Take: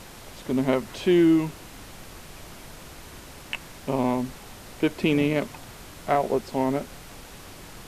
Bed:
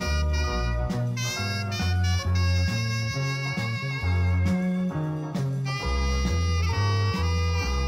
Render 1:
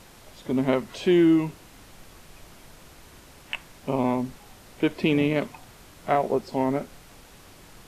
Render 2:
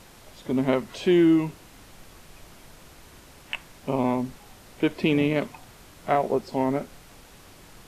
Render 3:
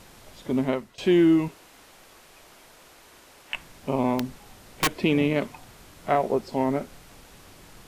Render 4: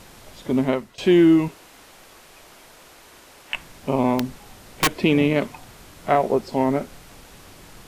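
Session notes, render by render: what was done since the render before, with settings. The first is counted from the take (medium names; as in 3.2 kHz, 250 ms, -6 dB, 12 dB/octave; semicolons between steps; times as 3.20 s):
noise print and reduce 6 dB
no audible change
0.58–0.98 s: fade out linear, to -20 dB; 1.48–3.54 s: tone controls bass -13 dB, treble -1 dB; 4.19–4.88 s: integer overflow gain 16 dB
trim +4 dB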